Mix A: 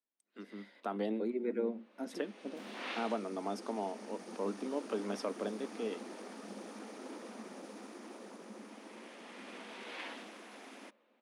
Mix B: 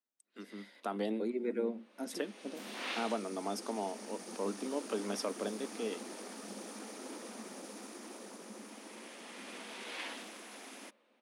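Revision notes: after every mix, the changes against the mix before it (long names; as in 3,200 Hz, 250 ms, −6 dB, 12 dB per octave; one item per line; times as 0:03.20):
master: remove low-pass filter 2,700 Hz 6 dB per octave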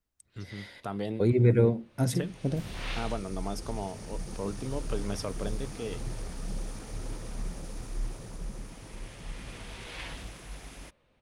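second voice +9.5 dB
master: remove Chebyshev high-pass filter 210 Hz, order 6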